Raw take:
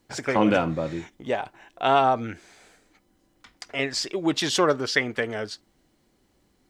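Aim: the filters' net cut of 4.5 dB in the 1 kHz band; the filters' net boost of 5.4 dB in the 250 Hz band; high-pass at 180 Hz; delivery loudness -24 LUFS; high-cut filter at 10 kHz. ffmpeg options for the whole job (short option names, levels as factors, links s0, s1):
-af "highpass=180,lowpass=10000,equalizer=f=250:t=o:g=9,equalizer=f=1000:t=o:g=-7.5"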